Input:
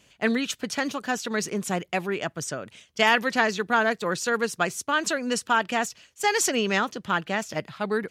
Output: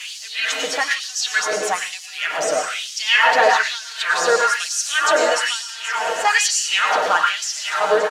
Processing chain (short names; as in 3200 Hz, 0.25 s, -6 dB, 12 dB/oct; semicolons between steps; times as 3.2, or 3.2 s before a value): zero-crossing step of -33.5 dBFS; LPF 8600 Hz 12 dB/oct; comb 6.5 ms, depth 68%; in parallel at -3 dB: limiter -21.5 dBFS, peak gain reduction 16.5 dB; 5.68–6.25 on the sum: compressor 2.5:1, threshold -31 dBFS, peak gain reduction 10 dB; repeats that get brighter 0.733 s, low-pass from 200 Hz, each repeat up 2 oct, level -6 dB; plate-style reverb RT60 1.1 s, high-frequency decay 0.75×, pre-delay 85 ms, DRR 0 dB; LFO high-pass sine 1.1 Hz 550–5400 Hz; gain -1 dB